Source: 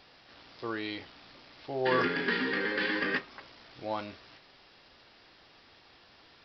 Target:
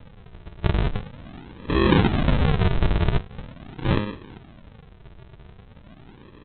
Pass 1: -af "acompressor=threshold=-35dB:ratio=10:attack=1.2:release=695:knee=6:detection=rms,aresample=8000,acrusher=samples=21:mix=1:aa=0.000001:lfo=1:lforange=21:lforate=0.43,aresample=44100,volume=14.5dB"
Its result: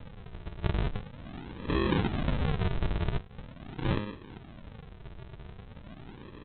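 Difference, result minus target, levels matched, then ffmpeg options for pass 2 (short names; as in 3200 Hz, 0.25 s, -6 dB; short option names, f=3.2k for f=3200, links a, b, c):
compressor: peak gain reduction +10.5 dB
-af "acompressor=threshold=-23.5dB:ratio=10:attack=1.2:release=695:knee=6:detection=rms,aresample=8000,acrusher=samples=21:mix=1:aa=0.000001:lfo=1:lforange=21:lforate=0.43,aresample=44100,volume=14.5dB"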